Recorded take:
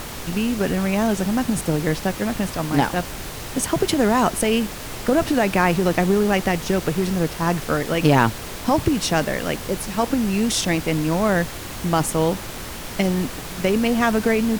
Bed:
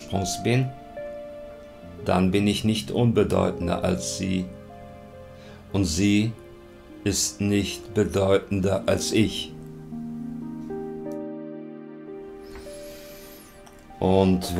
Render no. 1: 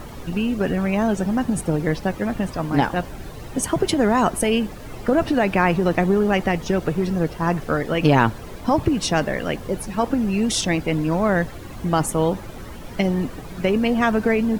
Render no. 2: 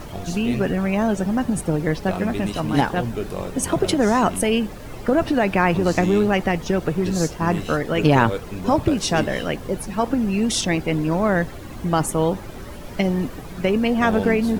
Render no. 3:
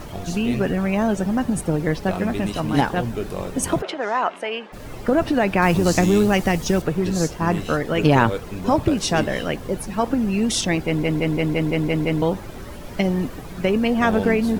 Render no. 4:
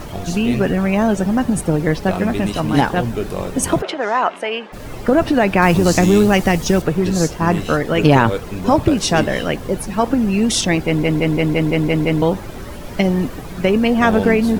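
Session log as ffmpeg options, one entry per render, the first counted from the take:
ffmpeg -i in.wav -af "afftdn=noise_reduction=13:noise_floor=-33" out.wav
ffmpeg -i in.wav -i bed.wav -filter_complex "[1:a]volume=-7.5dB[link_01];[0:a][link_01]amix=inputs=2:normalize=0" out.wav
ffmpeg -i in.wav -filter_complex "[0:a]asplit=3[link_01][link_02][link_03];[link_01]afade=type=out:start_time=3.81:duration=0.02[link_04];[link_02]highpass=640,lowpass=2800,afade=type=in:start_time=3.81:duration=0.02,afade=type=out:start_time=4.72:duration=0.02[link_05];[link_03]afade=type=in:start_time=4.72:duration=0.02[link_06];[link_04][link_05][link_06]amix=inputs=3:normalize=0,asettb=1/sr,asplit=3[link_07][link_08][link_09];[link_07]atrim=end=5.624[link_10];[link_08]atrim=start=5.62:end=6.82,asetpts=PTS-STARTPTS,afade=type=in:duration=0.004:curve=qsin,afade=type=out:start_time=1.196:duration=0.004:curve=qsin,bass=frequency=250:gain=3,treble=frequency=4000:gain=10[link_11];[link_09]atrim=start=6.816[link_12];[link_10][link_11]acrossfade=duration=0.004:curve1=hsin:curve2=qsin[link_13];[link_13][link_12]acrossfade=duration=0.004:curve1=qsin:curve2=hsin,asplit=9[link_14][link_15][link_16][link_17][link_18][link_19][link_20][link_21][link_22];[link_14]atrim=end=11.032[link_23];[link_15]atrim=start=10.858:end=11.032[link_24];[link_16]atrim=start=10.858:end=11.032[link_25];[link_17]atrim=start=10.858:end=11.032[link_26];[link_18]atrim=start=10.858:end=11.032[link_27];[link_19]atrim=start=10.858:end=11.032[link_28];[link_20]atrim=start=10.858:end=11.032[link_29];[link_21]atrim=start=10.858:end=11.032[link_30];[link_22]atrim=start=12.218[link_31];[link_23][link_24]acrossfade=duration=0.004:curve1=hsin:curve2=hsin[link_32];[link_32][link_25]acrossfade=duration=0.004:curve1=hsin:curve2=hsin[link_33];[link_33][link_26]acrossfade=duration=0.004:curve1=hsin:curve2=hsin[link_34];[link_34][link_27]acrossfade=duration=0.004:curve1=hsin:curve2=hsin[link_35];[link_35][link_28]acrossfade=duration=0.004:curve1=hsin:curve2=hsin[link_36];[link_36][link_29]acrossfade=duration=0.004:curve1=hsin:curve2=hsin[link_37];[link_37][link_30]acrossfade=duration=0.004:curve1=hsin:curve2=hsin[link_38];[link_38][link_31]acrossfade=duration=0.004:curve1=hsin:curve2=hsin" out.wav
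ffmpeg -i in.wav -af "volume=4.5dB,alimiter=limit=-1dB:level=0:latency=1" out.wav

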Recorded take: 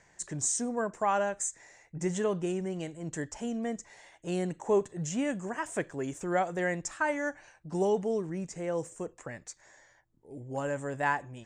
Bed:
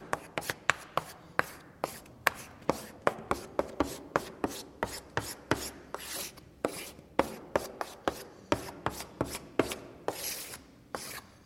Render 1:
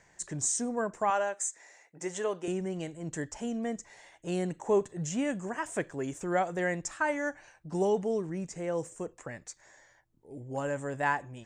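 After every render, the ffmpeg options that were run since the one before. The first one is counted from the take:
ffmpeg -i in.wav -filter_complex "[0:a]asettb=1/sr,asplit=3[link_01][link_02][link_03];[link_01]atrim=end=1.104[link_04];[link_02]atrim=start=1.1:end=2.48,asetpts=PTS-STARTPTS,afade=type=in:duration=0.004:curve=qsin,afade=type=out:start_time=1.376:duration=0.004:curve=qsin,highpass=390[link_05];[link_03]atrim=start=2.476[link_06];[link_04][link_05]acrossfade=duration=0.004:curve1=hsin:curve2=qsin[link_07];[link_07][link_06]acrossfade=duration=0.004:curve1=qsin:curve2=hsin" out.wav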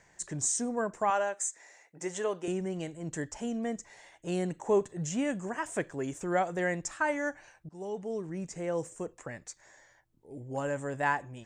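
ffmpeg -i in.wav -filter_complex "[0:a]asplit=2[link_01][link_02];[link_01]atrim=end=7.69,asetpts=PTS-STARTPTS,afade=type=out:start_time=7.686:duration=0.004:curve=hsin:silence=0.0841395[link_03];[link_02]atrim=start=7.69,asetpts=PTS-STARTPTS,afade=type=in:duration=0.83:silence=0.0841395[link_04];[link_03][link_04]concat=n=2:v=0:a=1" out.wav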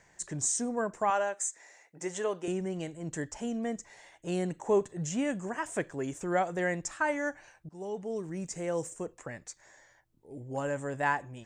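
ffmpeg -i in.wav -filter_complex "[0:a]asettb=1/sr,asplit=3[link_01][link_02][link_03];[link_01]atrim=end=8.164[link_04];[link_02]atrim=start=8.16:end=8.94,asetpts=PTS-STARTPTS,afade=type=in:duration=0.004:curve=qsin,afade=type=out:start_time=0.776:duration=0.004:curve=qsin,highshelf=frequency=5200:gain=8[link_05];[link_03]atrim=start=8.936[link_06];[link_04][link_05]acrossfade=duration=0.004:curve1=hsin:curve2=qsin[link_07];[link_07][link_06]acrossfade=duration=0.004:curve1=qsin:curve2=hsin" out.wav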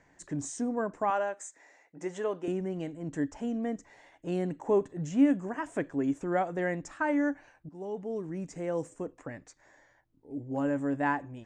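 ffmpeg -i in.wav -af "lowpass=frequency=2000:poles=1,equalizer=frequency=280:width=7.5:gain=12.5" out.wav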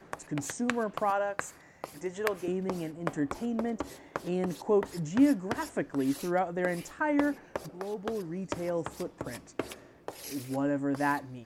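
ffmpeg -i in.wav -i bed.wav -filter_complex "[1:a]volume=-6.5dB[link_01];[0:a][link_01]amix=inputs=2:normalize=0" out.wav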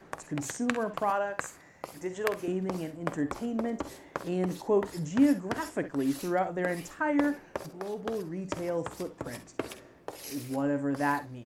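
ffmpeg -i in.wav -af "aecho=1:1:49|65:0.2|0.178" out.wav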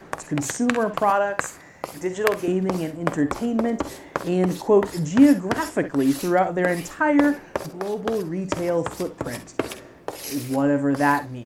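ffmpeg -i in.wav -af "volume=9dB,alimiter=limit=-1dB:level=0:latency=1" out.wav

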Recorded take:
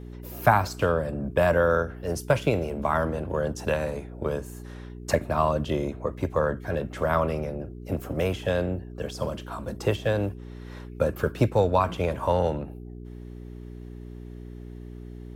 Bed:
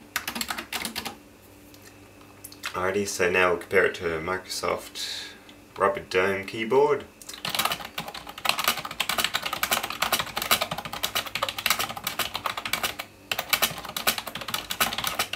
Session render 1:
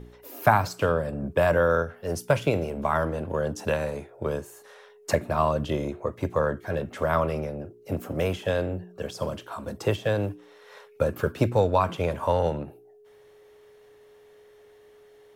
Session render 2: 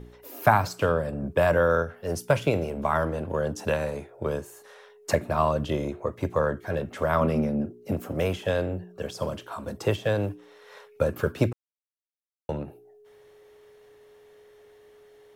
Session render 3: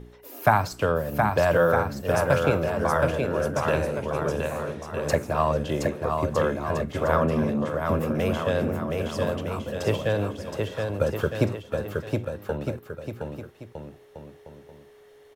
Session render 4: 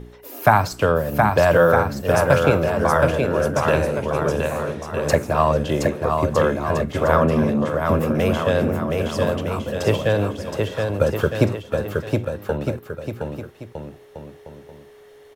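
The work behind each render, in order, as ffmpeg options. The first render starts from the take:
ffmpeg -i in.wav -af "bandreject=frequency=60:width_type=h:width=4,bandreject=frequency=120:width_type=h:width=4,bandreject=frequency=180:width_type=h:width=4,bandreject=frequency=240:width_type=h:width=4,bandreject=frequency=300:width_type=h:width=4,bandreject=frequency=360:width_type=h:width=4" out.wav
ffmpeg -i in.wav -filter_complex "[0:a]asettb=1/sr,asplit=3[link_01][link_02][link_03];[link_01]atrim=end=7.214[link_04];[link_02]atrim=start=7.21:end=7.92,asetpts=PTS-STARTPTS,afade=type=in:duration=0.004:curve=qsin,afade=type=out:start_time=0.706:duration=0.004:curve=qsin,equalizer=frequency=220:width_type=o:width=0.66:gain=15[link_05];[link_03]atrim=start=7.916[link_06];[link_04][link_05]acrossfade=duration=0.004:curve1=hsin:curve2=qsin[link_07];[link_07][link_06]acrossfade=duration=0.004:curve1=qsin:curve2=hsin,asplit=3[link_08][link_09][link_10];[link_08]atrim=end=11.53,asetpts=PTS-STARTPTS,afade=type=out:start_time=11.526:duration=0.004:curve=hsin[link_11];[link_09]atrim=start=11.53:end=12.49,asetpts=PTS-STARTPTS,volume=0[link_12];[link_10]atrim=start=12.49,asetpts=PTS-STARTPTS,afade=type=in:duration=0.004:curve=hsin[link_13];[link_11][link_12][link_13]concat=n=3:v=0:a=1" out.wav
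ffmpeg -i in.wav -af "aecho=1:1:720|1260|1665|1969|2197:0.631|0.398|0.251|0.158|0.1" out.wav
ffmpeg -i in.wav -af "volume=5.5dB,alimiter=limit=-2dB:level=0:latency=1" out.wav

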